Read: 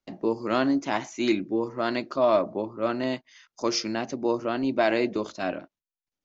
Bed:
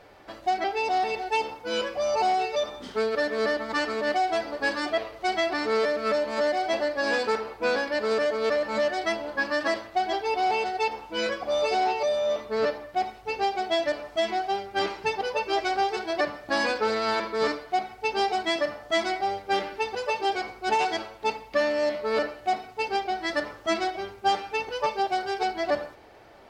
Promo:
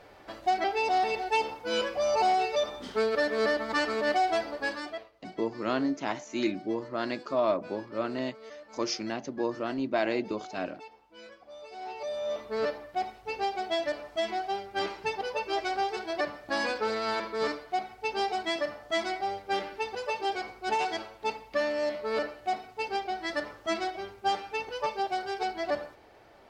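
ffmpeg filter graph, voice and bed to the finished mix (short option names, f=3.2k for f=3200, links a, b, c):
-filter_complex "[0:a]adelay=5150,volume=-5dB[a];[1:a]volume=16dB,afade=t=out:st=4.32:d=0.79:silence=0.0944061,afade=t=in:st=11.72:d=0.76:silence=0.141254[b];[a][b]amix=inputs=2:normalize=0"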